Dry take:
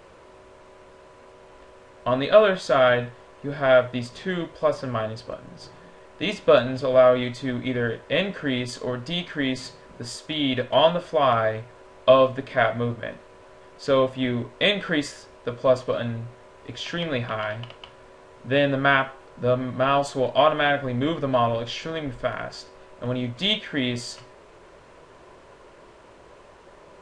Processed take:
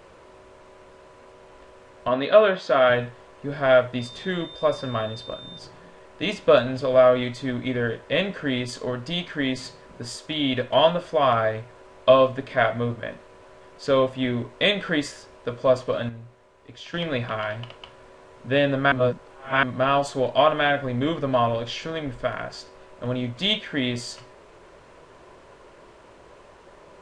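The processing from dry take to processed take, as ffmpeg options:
-filter_complex "[0:a]asettb=1/sr,asplit=3[s0][s1][s2];[s0]atrim=end=2.084[s3];[s1]atrim=start=2.08:end=2.9,asetpts=PTS-STARTPTS,afade=t=in:d=0.004:c=qsin,afade=t=out:st=0.816:d=0.004:c=qsin,highpass=180,lowpass=4500[s4];[s2]atrim=start=2.896[s5];[s3][s4]acrossfade=d=0.004:c1=hsin:c2=qsin[s6];[s6][s5]acrossfade=d=0.004:c1=qsin:c2=hsin,asettb=1/sr,asplit=3[s7][s8][s9];[s7]atrim=end=3.994[s10];[s8]atrim=start=3.99:end=5.59,asetpts=PTS-STARTPTS,afade=t=in:d=0.004:c=qsin,afade=t=out:st=1.596:d=0.004:c=qsin,aeval=exprs='val(0)+0.01*sin(2*PI*3600*n/s)':c=same[s11];[s9]atrim=start=5.586[s12];[s10][s11]acrossfade=d=0.004:c1=hsin:c2=qsin[s13];[s13][s12]acrossfade=d=0.004:c1=qsin:c2=hsin,asplit=5[s14][s15][s16][s17][s18];[s14]atrim=end=16.092[s19];[s15]atrim=start=16.088:end=16.942,asetpts=PTS-STARTPTS,volume=0.398[s20];[s16]atrim=start=16.938:end=18.922[s21];[s17]atrim=start=18.918:end=19.632,asetpts=PTS-STARTPTS,areverse[s22];[s18]atrim=start=19.628[s23];[s19][s20]acrossfade=d=0.004:c1=hsin:c2=hsin[s24];[s24][s21]acrossfade=d=0.004:c1=hsin:c2=hsin[s25];[s25][s22]acrossfade=d=0.004:c1=hsin:c2=hsin[s26];[s26][s23]acrossfade=d=0.004:c1=hsin:c2=hsin"

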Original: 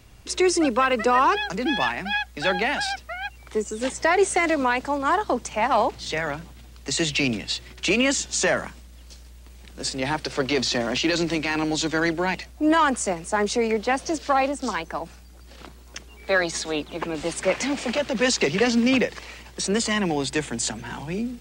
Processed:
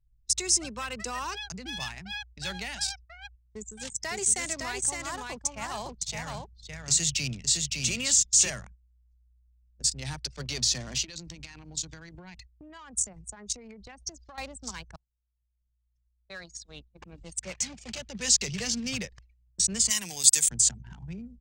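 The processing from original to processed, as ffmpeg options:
-filter_complex "[0:a]asettb=1/sr,asplit=3[s0][s1][s2];[s0]atrim=end=3.214[s3];[s1]atrim=start=3.21:end=8.5,asetpts=PTS-STARTPTS,afade=t=in:d=0.004:c=qsin,afade=t=out:st=5.286:d=0.004:c=qsin,aecho=1:1:561:0.708,atrim=end_sample=233289[s4];[s2]atrim=start=8.496[s5];[s3][s4]acrossfade=d=0.004:c1=hsin:c2=qsin[s6];[s6][s5]acrossfade=d=0.004:c1=qsin:c2=hsin,asettb=1/sr,asplit=3[s7][s8][s9];[s7]atrim=end=11.034[s10];[s8]atrim=start=11.03:end=14.38,asetpts=PTS-STARTPTS,afade=t=in:d=0.004:c=qsin,afade=t=out:st=3.346:d=0.004:c=qsin,acompressor=threshold=0.0501:ratio=16:attack=3.2:release=140:knee=1:detection=peak[s11];[s9]atrim=start=14.376[s12];[s10][s11]acrossfade=d=0.004:c1=hsin:c2=qsin[s13];[s13][s12]acrossfade=d=0.004:c1=qsin:c2=hsin,asplit=3[s14][s15][s16];[s14]afade=t=out:st=19.89:d=0.02[s17];[s15]aemphasis=mode=production:type=riaa,afade=t=in:st=19.89:d=0.02,afade=t=out:st=20.48:d=0.02[s18];[s16]afade=t=in:st=20.48:d=0.02[s19];[s17][s18][s19]amix=inputs=3:normalize=0,asplit=2[s20][s21];[s20]atrim=end=14.96,asetpts=PTS-STARTPTS,afade=t=out:st=14.956:d=0.004:c=hsin:silence=0.0630957[s22];[s21]atrim=start=14.96,asetpts=PTS-STARTPTS,afade=t=in:d=3.31:silence=0.0630957[s23];[s22][s23]concat=n=2:v=0:a=1,agate=range=0.355:threshold=0.0126:ratio=16:detection=peak,anlmdn=39.8,firequalizer=gain_entry='entry(120,0);entry(280,-20);entry(6300,6)':delay=0.05:min_phase=1"

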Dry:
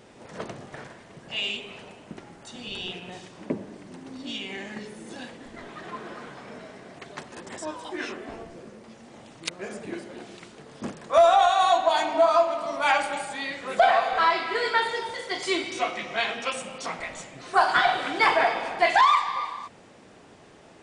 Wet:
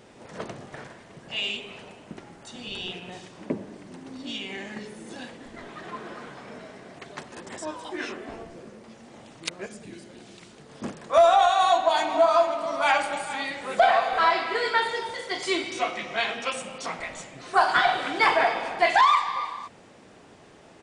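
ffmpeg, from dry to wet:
-filter_complex "[0:a]asettb=1/sr,asplit=3[s0][s1][s2];[s0]atrim=end=9.664[s3];[s1]atrim=start=9.66:end=10.7,asetpts=PTS-STARTPTS,afade=t=in:d=0.004:c=qsin,afade=t=out:st=1.036:d=0.004:c=qsin,acrossover=split=220|3000[s4][s5][s6];[s5]acompressor=threshold=0.00355:ratio=3:attack=3.2:release=140:knee=2.83:detection=peak[s7];[s4][s7][s6]amix=inputs=3:normalize=0[s8];[s2]atrim=start=10.696[s9];[s3][s8]acrossfade=d=0.004:c1=hsin:c2=qsin[s10];[s10][s9]acrossfade=d=0.004:c1=qsin:c2=hsin,asplit=3[s11][s12][s13];[s11]afade=t=out:st=12.09:d=0.02[s14];[s12]aecho=1:1:441:0.211,afade=t=in:st=12.09:d=0.02,afade=t=out:st=14.58:d=0.02[s15];[s13]afade=t=in:st=14.58:d=0.02[s16];[s14][s15][s16]amix=inputs=3:normalize=0"

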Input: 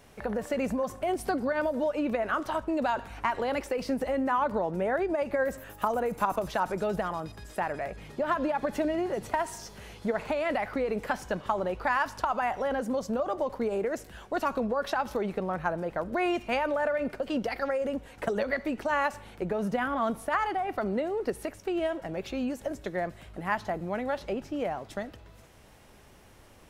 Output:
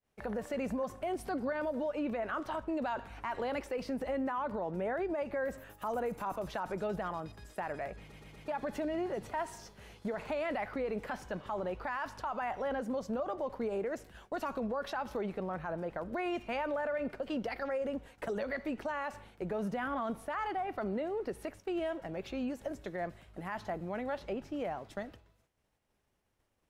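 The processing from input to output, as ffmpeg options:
-filter_complex "[0:a]asplit=5[s0][s1][s2][s3][s4];[s0]atrim=end=8.122[s5];[s1]atrim=start=7.998:end=8.122[s6];[s2]atrim=start=7.998:end=8.122[s7];[s3]atrim=start=7.998:end=8.122[s8];[s4]atrim=start=8.478[s9];[s5][s6]acrossfade=d=0.004:c1=hsin:c2=hsin[s10];[s10][s7]acrossfade=d=0.004:c1=hsin:c2=hsin[s11];[s11][s8]acrossfade=d=0.004:c1=hsin:c2=hsin[s12];[s12][s9]acrossfade=d=0.004:c1=hsin:c2=hsin,agate=range=0.0224:threshold=0.00794:ratio=3:detection=peak,alimiter=limit=0.075:level=0:latency=1:release=15,adynamicequalizer=threshold=0.00224:dfrequency=4700:dqfactor=0.7:tfrequency=4700:tqfactor=0.7:attack=5:release=100:ratio=0.375:range=3:mode=cutabove:tftype=highshelf,volume=0.562"

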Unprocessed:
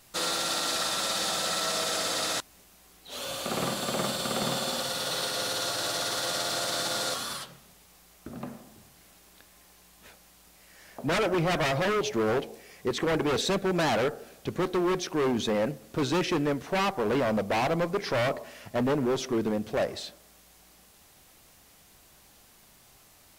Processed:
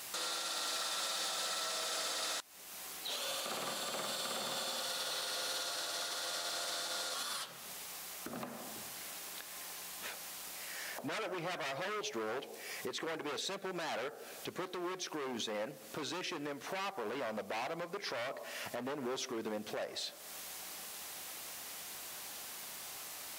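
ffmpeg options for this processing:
-filter_complex "[0:a]asettb=1/sr,asplit=3[s0][s1][s2];[s0]atrim=end=0.544[s3];[s1]atrim=start=0.54:end=5.57,asetpts=PTS-STARTPTS,afade=t=in:d=0.004:c=qsin,afade=t=out:st=5.026:d=0.004:c=qsin,asoftclip=type=hard:threshold=0.0668[s4];[s2]atrim=start=5.566[s5];[s3][s4]acrossfade=d=0.004:c1=hsin:c2=qsin[s6];[s6][s5]acrossfade=d=0.004:c1=qsin:c2=hsin,highpass=f=680:p=1,acompressor=threshold=0.00224:ratio=2.5,alimiter=level_in=7.5:limit=0.0631:level=0:latency=1:release=183,volume=0.133,volume=3.98"

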